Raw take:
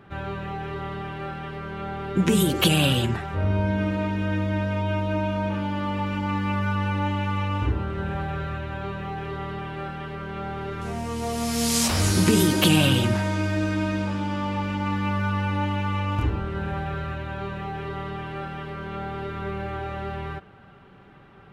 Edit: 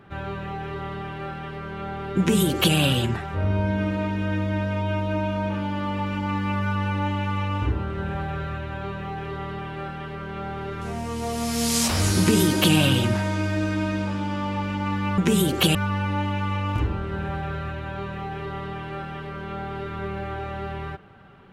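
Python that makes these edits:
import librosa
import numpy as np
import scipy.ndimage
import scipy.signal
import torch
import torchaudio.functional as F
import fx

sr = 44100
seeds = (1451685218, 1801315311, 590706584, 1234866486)

y = fx.edit(x, sr, fx.duplicate(start_s=2.19, length_s=0.57, to_s=15.18), tone=tone)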